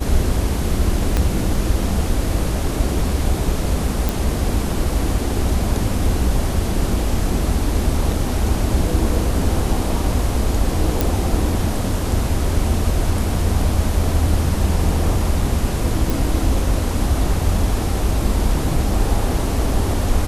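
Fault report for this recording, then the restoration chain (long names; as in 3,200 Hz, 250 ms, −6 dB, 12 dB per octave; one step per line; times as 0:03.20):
0:01.17: click −5 dBFS
0:04.09: click
0:11.01: click
0:16.10: click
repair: click removal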